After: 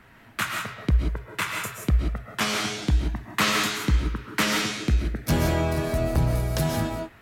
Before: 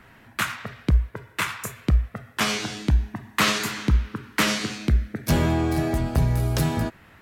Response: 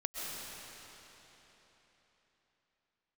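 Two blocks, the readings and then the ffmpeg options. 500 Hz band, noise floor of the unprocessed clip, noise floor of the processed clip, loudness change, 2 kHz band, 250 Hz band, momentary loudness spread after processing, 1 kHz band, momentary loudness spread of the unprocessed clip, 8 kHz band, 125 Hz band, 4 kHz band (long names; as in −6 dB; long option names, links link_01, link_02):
+1.0 dB, −52 dBFS, −52 dBFS, −1.0 dB, −0.5 dB, −2.0 dB, 6 LU, −0.5 dB, 8 LU, 0.0 dB, −1.5 dB, 0.0 dB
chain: -filter_complex "[1:a]atrim=start_sample=2205,afade=type=out:start_time=0.24:duration=0.01,atrim=end_sample=11025[link_01];[0:a][link_01]afir=irnorm=-1:irlink=0"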